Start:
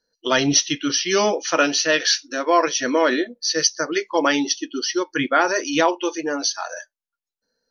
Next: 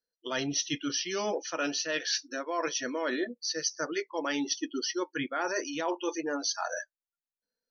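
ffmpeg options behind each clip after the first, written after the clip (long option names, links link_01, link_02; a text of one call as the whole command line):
ffmpeg -i in.wav -af "afftdn=noise_reduction=15:noise_floor=-36,areverse,acompressor=threshold=-27dB:ratio=8,areverse,volume=-1.5dB" out.wav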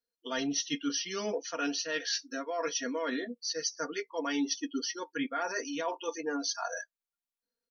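ffmpeg -i in.wav -af "equalizer=frequency=280:width=7.2:gain=3,aecho=1:1:4.3:0.73,volume=-4dB" out.wav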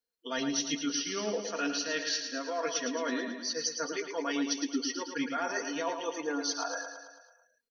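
ffmpeg -i in.wav -af "aecho=1:1:110|220|330|440|550|660|770:0.422|0.245|0.142|0.0823|0.0477|0.0277|0.0161" out.wav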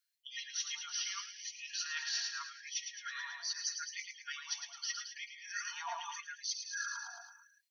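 ffmpeg -i in.wav -af "areverse,acompressor=threshold=-40dB:ratio=8,areverse,afftfilt=real='re*gte(b*sr/1024,680*pow(1900/680,0.5+0.5*sin(2*PI*0.8*pts/sr)))':imag='im*gte(b*sr/1024,680*pow(1900/680,0.5+0.5*sin(2*PI*0.8*pts/sr)))':win_size=1024:overlap=0.75,volume=6dB" out.wav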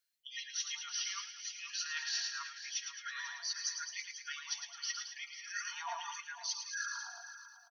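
ffmpeg -i in.wav -af "aecho=1:1:494:0.237" out.wav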